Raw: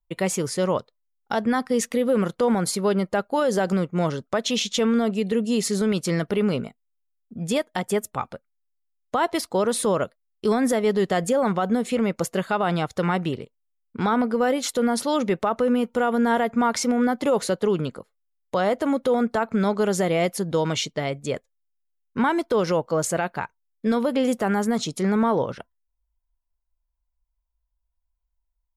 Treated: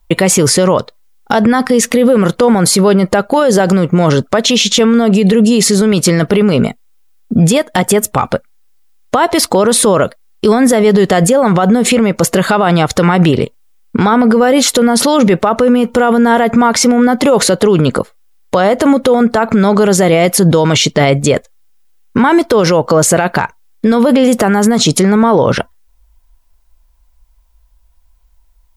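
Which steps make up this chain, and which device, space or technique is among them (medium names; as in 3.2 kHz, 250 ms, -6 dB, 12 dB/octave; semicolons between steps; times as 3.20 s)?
loud club master (compression 2.5:1, threshold -24 dBFS, peak gain reduction 5.5 dB; hard clipper -16.5 dBFS, distortion -40 dB; loudness maximiser +27.5 dB); trim -1 dB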